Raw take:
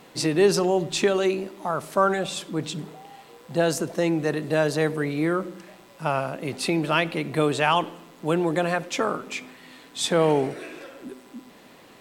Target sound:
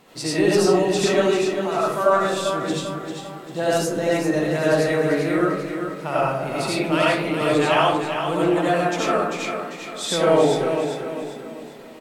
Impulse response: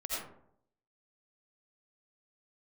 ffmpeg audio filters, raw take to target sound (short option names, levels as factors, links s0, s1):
-filter_complex "[0:a]aecho=1:1:395|790|1185|1580|1975:0.422|0.177|0.0744|0.0312|0.0131[s0];[1:a]atrim=start_sample=2205[s1];[s0][s1]afir=irnorm=-1:irlink=0"